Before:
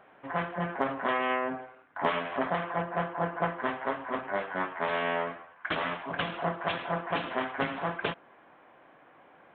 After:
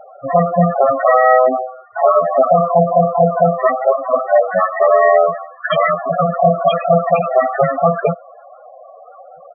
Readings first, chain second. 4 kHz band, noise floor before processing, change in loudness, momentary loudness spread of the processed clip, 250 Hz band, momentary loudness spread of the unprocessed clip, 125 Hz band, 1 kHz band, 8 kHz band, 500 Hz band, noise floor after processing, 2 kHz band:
+4.5 dB, −58 dBFS, +18.0 dB, 7 LU, +13.5 dB, 6 LU, +18.0 dB, +17.0 dB, can't be measured, +21.5 dB, −41 dBFS, +9.0 dB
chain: comb filter 1.6 ms, depth 65%
spectral peaks only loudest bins 8
boost into a limiter +21 dB
level −1 dB

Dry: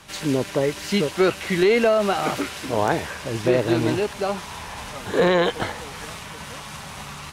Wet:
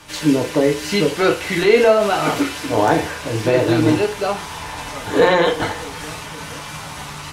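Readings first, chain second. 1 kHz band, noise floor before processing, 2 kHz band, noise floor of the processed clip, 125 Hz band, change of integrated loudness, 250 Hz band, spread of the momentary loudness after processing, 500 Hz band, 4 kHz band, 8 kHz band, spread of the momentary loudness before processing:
+5.5 dB, −37 dBFS, +5.0 dB, −32 dBFS, +4.0 dB, +4.5 dB, +5.0 dB, 16 LU, +4.5 dB, +4.5 dB, +4.5 dB, 16 LU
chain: feedback delay network reverb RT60 0.35 s, low-frequency decay 0.8×, high-frequency decay 0.8×, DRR 1 dB
level +2.5 dB

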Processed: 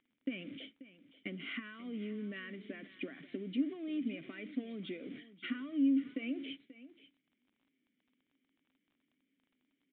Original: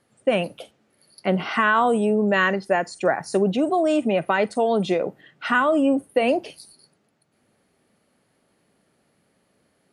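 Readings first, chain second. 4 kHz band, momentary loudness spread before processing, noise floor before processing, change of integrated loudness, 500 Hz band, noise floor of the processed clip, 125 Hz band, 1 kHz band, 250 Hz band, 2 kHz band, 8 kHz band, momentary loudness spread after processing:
−14.5 dB, 7 LU, −68 dBFS, −18.0 dB, −27.5 dB, −83 dBFS, −20.5 dB, −37.0 dB, −12.0 dB, −22.5 dB, below −35 dB, 17 LU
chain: converter with a step at zero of −29.5 dBFS
noise gate −32 dBFS, range −36 dB
dynamic equaliser 1,100 Hz, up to +6 dB, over −33 dBFS, Q 2.3
downward compressor, threshold −26 dBFS, peak gain reduction 15 dB
formant filter i
on a send: single-tap delay 535 ms −16.5 dB
on the sum: surface crackle 35 per second −58 dBFS
downsampling to 8,000 Hz
level +1.5 dB

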